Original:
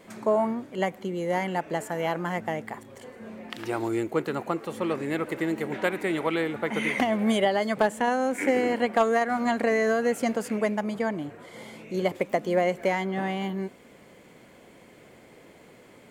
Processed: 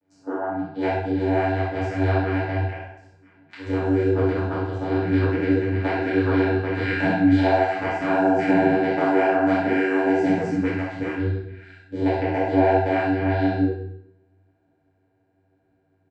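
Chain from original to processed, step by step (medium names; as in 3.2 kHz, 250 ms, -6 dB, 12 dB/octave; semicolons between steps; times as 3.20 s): rattle on loud lows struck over -41 dBFS, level -30 dBFS; spectral noise reduction 25 dB; dynamic bell 2.2 kHz, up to +4 dB, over -43 dBFS, Q 0.86; in parallel at 0 dB: compression, threshold -32 dBFS, peak gain reduction 13.5 dB; on the sum: vocoder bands 8, saw 95.1 Hz; early reflections 45 ms -7 dB, 63 ms -6.5 dB; FDN reverb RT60 0.76 s, low-frequency decay 1.35×, high-frequency decay 0.9×, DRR -7 dB; detune thickener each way 33 cents; trim -2 dB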